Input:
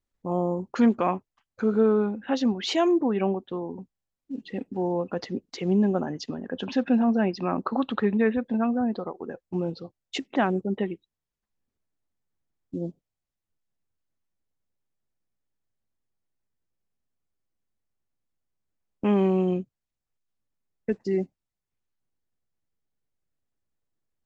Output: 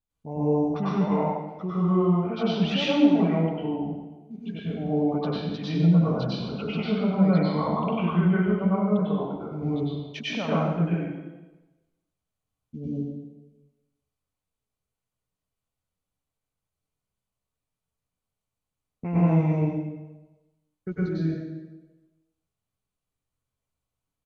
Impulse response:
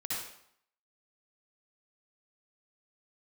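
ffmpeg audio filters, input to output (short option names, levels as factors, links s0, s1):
-filter_complex "[0:a]equalizer=f=125:t=o:w=0.33:g=4,equalizer=f=400:t=o:w=0.33:g=-6,equalizer=f=2000:t=o:w=0.33:g=-7,equalizer=f=6300:t=o:w=0.33:g=-7,alimiter=limit=0.126:level=0:latency=1:release=59,asetrate=37084,aresample=44100,atempo=1.18921[s0];[1:a]atrim=start_sample=2205,asetrate=26019,aresample=44100[s1];[s0][s1]afir=irnorm=-1:irlink=0,volume=0.708"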